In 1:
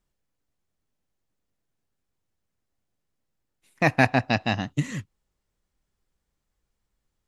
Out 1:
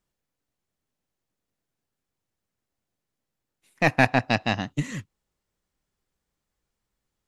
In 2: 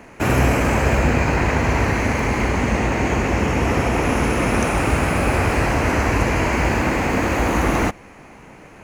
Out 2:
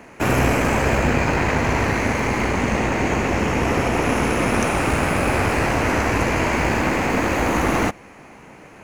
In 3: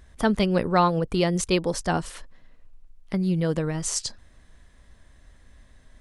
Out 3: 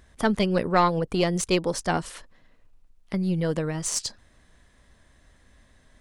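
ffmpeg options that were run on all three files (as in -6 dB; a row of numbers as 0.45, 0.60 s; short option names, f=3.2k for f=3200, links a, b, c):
-af "lowshelf=f=72:g=-8.5,aeval=exprs='0.75*(cos(1*acos(clip(val(0)/0.75,-1,1)))-cos(1*PI/2))+0.0422*(cos(6*acos(clip(val(0)/0.75,-1,1)))-cos(6*PI/2))':c=same"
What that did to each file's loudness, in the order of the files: 0.0, -1.0, -0.5 LU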